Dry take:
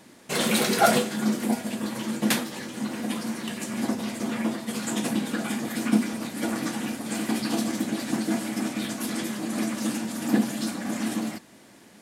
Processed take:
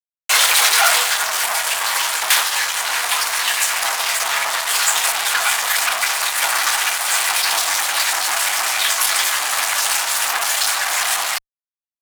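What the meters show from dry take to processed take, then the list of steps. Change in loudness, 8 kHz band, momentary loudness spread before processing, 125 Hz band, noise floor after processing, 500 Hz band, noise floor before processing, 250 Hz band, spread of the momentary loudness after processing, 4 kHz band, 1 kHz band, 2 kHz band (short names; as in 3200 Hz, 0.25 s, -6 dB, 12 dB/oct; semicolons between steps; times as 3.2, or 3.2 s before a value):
+11.5 dB, +17.0 dB, 8 LU, under -15 dB, under -85 dBFS, -1.0 dB, -52 dBFS, under -25 dB, 5 LU, +16.5 dB, +11.5 dB, +16.0 dB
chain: fuzz box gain 36 dB, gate -39 dBFS; HPF 880 Hz 24 dB/oct; added harmonics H 8 -38 dB, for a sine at -5 dBFS; gain +4 dB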